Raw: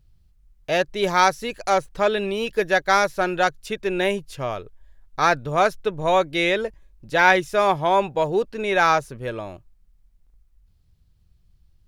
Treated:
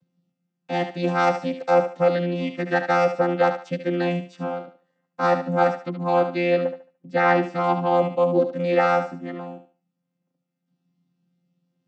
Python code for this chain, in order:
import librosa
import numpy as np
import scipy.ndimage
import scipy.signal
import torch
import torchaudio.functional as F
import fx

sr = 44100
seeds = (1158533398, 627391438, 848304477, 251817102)

y = fx.chord_vocoder(x, sr, chord='bare fifth', root=53)
y = fx.high_shelf(y, sr, hz=5000.0, db=-7.0, at=(5.79, 7.64))
y = fx.echo_thinned(y, sr, ms=73, feedback_pct=30, hz=380.0, wet_db=-8.5)